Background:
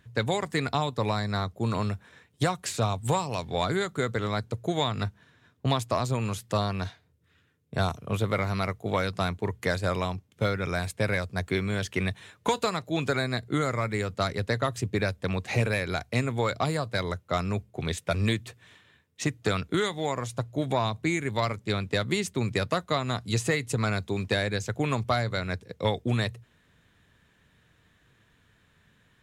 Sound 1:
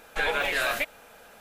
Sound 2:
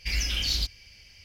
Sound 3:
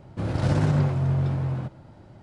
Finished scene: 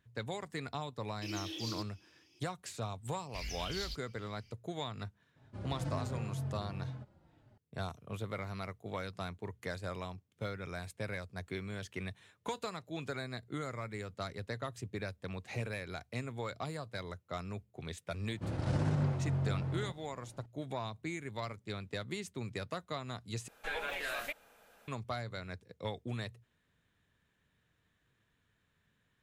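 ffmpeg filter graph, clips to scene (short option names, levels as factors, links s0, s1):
-filter_complex "[2:a]asplit=2[s0][s1];[3:a]asplit=2[s2][s3];[0:a]volume=0.224[s4];[s0]afreqshift=270[s5];[s2]asplit=2[s6][s7];[s7]adelay=4,afreqshift=-2[s8];[s6][s8]amix=inputs=2:normalize=1[s9];[s4]asplit=2[s10][s11];[s10]atrim=end=23.484[s12];[1:a]atrim=end=1.4,asetpts=PTS-STARTPTS,volume=0.251[s13];[s11]atrim=start=24.876[s14];[s5]atrim=end=1.24,asetpts=PTS-STARTPTS,volume=0.178,afade=t=in:d=0.004:c=hsin,afade=t=out:st=1.236:d=0.004:c=hsin,adelay=1160[s15];[s1]atrim=end=1.24,asetpts=PTS-STARTPTS,volume=0.188,afade=t=in:d=0.004:c=hsin,afade=t=out:st=1.236:d=0.004:c=hsin,adelay=145089S[s16];[s9]atrim=end=2.22,asetpts=PTS-STARTPTS,volume=0.211,afade=t=in:d=0.004:c=hsin,afade=t=out:st=2.216:d=0.004:c=hsin,adelay=5360[s17];[s3]atrim=end=2.22,asetpts=PTS-STARTPTS,volume=0.316,afade=t=in:d=0.004:c=hsin,afade=t=out:st=2.216:d=0.004:c=hsin,adelay=18240[s18];[s12][s13]acrossfade=d=0.004:c1=hsin:c2=hsin[s19];[s19][s14]acrossfade=d=0.004:c1=hsin:c2=hsin[s20];[s20][s15][s16][s17][s18]amix=inputs=5:normalize=0"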